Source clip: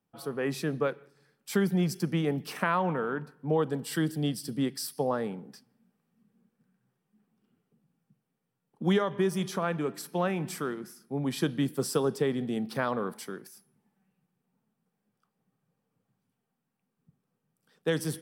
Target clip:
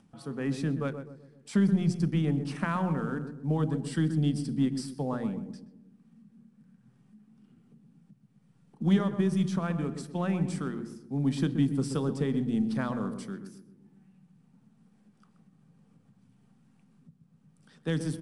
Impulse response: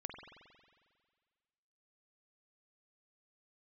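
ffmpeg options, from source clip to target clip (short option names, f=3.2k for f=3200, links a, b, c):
-filter_complex "[0:a]lowshelf=f=320:t=q:w=1.5:g=7.5,aeval=exprs='0.355*(cos(1*acos(clip(val(0)/0.355,-1,1)))-cos(1*PI/2))+0.0316*(cos(3*acos(clip(val(0)/0.355,-1,1)))-cos(3*PI/2))+0.00631*(cos(4*acos(clip(val(0)/0.355,-1,1)))-cos(4*PI/2))':c=same,asoftclip=type=tanh:threshold=-12.5dB,asplit=2[a][b];[b]adelay=127,lowpass=f=820:p=1,volume=-7dB,asplit=2[c][d];[d]adelay=127,lowpass=f=820:p=1,volume=0.46,asplit=2[e][f];[f]adelay=127,lowpass=f=820:p=1,volume=0.46,asplit=2[g][h];[h]adelay=127,lowpass=f=820:p=1,volume=0.46,asplit=2[i][j];[j]adelay=127,lowpass=f=820:p=1,volume=0.46[k];[a][c][e][g][i][k]amix=inputs=6:normalize=0,acompressor=mode=upward:threshold=-44dB:ratio=2.5,bandreject=f=60:t=h:w=6,bandreject=f=120:t=h:w=6,bandreject=f=180:t=h:w=6,bandreject=f=240:t=h:w=6,bandreject=f=300:t=h:w=6,bandreject=f=360:t=h:w=6,bandreject=f=420:t=h:w=6,bandreject=f=480:t=h:w=6,deesser=0.7,volume=-2dB" -ar 22050 -c:a adpcm_ima_wav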